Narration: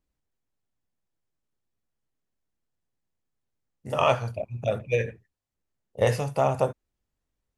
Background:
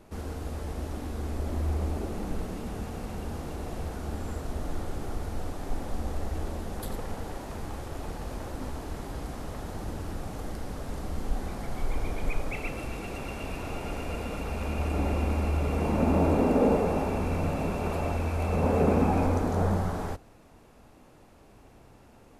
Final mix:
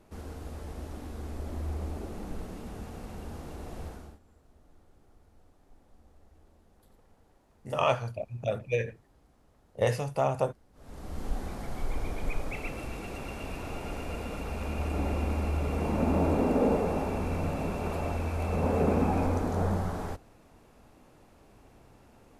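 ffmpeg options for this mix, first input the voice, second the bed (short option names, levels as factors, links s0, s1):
-filter_complex "[0:a]adelay=3800,volume=0.631[s0];[1:a]volume=8.91,afade=t=out:st=3.86:d=0.33:silence=0.0841395,afade=t=in:st=10.73:d=0.53:silence=0.0595662[s1];[s0][s1]amix=inputs=2:normalize=0"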